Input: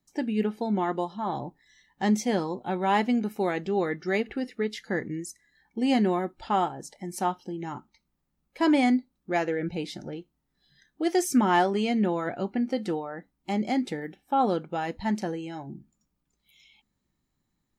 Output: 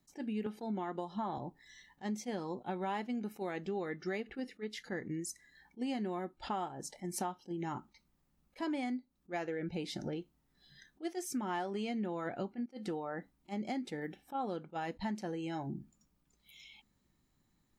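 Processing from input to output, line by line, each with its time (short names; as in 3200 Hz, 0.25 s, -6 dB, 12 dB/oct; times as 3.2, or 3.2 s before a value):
0.46–1.38 three-band squash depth 100%
12.66–13.1 fade in, from -16 dB
whole clip: compressor 6:1, threshold -38 dBFS; attack slew limiter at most 420 dB/s; gain +2.5 dB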